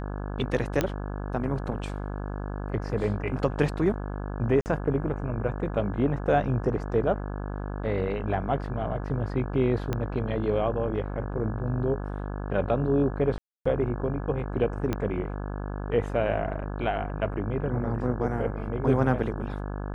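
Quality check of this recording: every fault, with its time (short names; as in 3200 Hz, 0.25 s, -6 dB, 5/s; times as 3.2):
buzz 50 Hz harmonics 34 -33 dBFS
0.81 pop -10 dBFS
4.61–4.66 gap 49 ms
9.93 pop -15 dBFS
13.38–13.65 gap 0.275 s
14.93 pop -14 dBFS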